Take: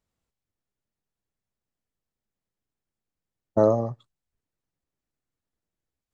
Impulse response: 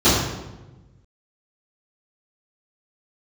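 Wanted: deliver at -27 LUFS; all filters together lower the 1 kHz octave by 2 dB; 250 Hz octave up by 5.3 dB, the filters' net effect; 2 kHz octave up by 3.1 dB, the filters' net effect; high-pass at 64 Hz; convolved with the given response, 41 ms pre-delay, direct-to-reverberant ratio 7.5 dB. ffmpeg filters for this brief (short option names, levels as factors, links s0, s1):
-filter_complex "[0:a]highpass=64,equalizer=f=250:t=o:g=7,equalizer=f=1000:t=o:g=-5,equalizer=f=2000:t=o:g=7,asplit=2[s0][s1];[1:a]atrim=start_sample=2205,adelay=41[s2];[s1][s2]afir=irnorm=-1:irlink=0,volume=0.0282[s3];[s0][s3]amix=inputs=2:normalize=0,volume=0.562"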